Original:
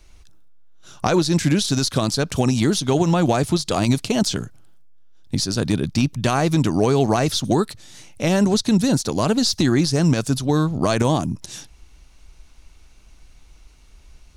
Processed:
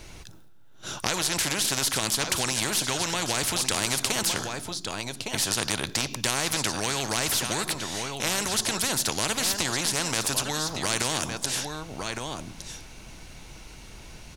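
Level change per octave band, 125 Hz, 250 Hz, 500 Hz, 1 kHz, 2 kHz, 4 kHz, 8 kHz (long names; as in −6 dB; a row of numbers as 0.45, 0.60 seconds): −15.0, −16.0, −11.5, −6.0, +1.0, 0.0, +3.5 decibels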